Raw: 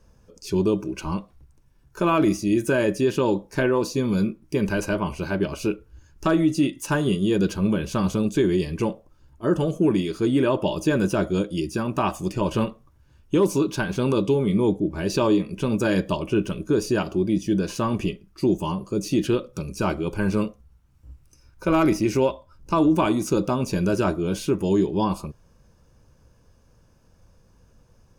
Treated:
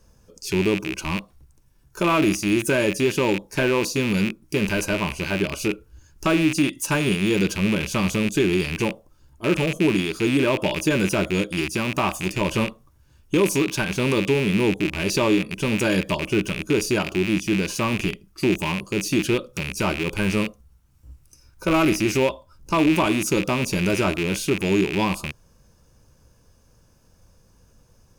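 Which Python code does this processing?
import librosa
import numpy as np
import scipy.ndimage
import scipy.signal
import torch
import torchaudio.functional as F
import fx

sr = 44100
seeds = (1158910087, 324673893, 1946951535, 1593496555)

y = fx.rattle_buzz(x, sr, strikes_db=-32.0, level_db=-18.0)
y = fx.high_shelf(y, sr, hz=4700.0, db=9.0)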